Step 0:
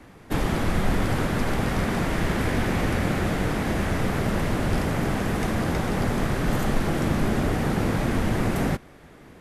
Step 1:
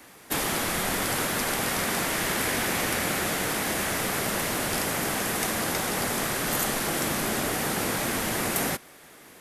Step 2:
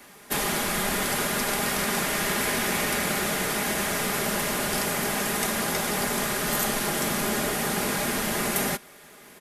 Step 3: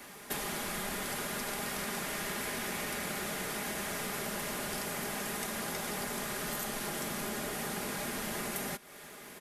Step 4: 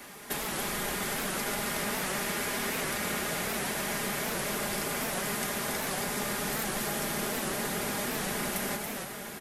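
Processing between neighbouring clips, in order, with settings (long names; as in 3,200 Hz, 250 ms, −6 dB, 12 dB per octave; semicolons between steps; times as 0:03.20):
RIAA equalisation recording
comb filter 4.9 ms, depth 48%
downward compressor 4 to 1, threshold −36 dBFS, peak gain reduction 12 dB
single-tap delay 279 ms −5.5 dB; convolution reverb RT60 5.0 s, pre-delay 123 ms, DRR 6 dB; wow of a warped record 78 rpm, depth 160 cents; level +2.5 dB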